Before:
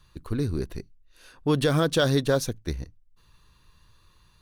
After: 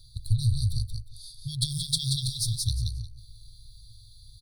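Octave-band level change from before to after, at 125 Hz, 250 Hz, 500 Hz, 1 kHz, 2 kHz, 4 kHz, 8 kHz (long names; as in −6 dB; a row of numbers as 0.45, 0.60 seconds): +1.5 dB, below −10 dB, below −40 dB, below −40 dB, below −40 dB, +3.5 dB, +5.5 dB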